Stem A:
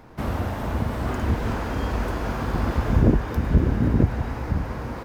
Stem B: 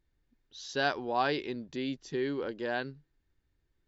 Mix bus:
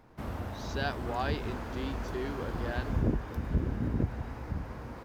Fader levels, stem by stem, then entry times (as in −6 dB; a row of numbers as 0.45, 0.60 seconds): −11.0, −5.0 decibels; 0.00, 0.00 seconds